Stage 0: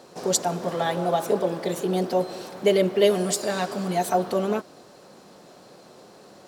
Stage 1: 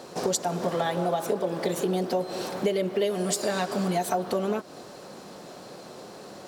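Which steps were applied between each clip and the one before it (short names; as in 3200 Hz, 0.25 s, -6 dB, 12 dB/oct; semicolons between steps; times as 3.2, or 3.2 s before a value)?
compressor 6:1, threshold -29 dBFS, peak gain reduction 15 dB; gain +5.5 dB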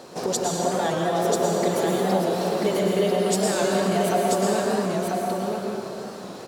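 echo 0.989 s -4 dB; plate-style reverb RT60 2.5 s, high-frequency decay 0.7×, pre-delay 95 ms, DRR -1.5 dB; record warp 45 rpm, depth 100 cents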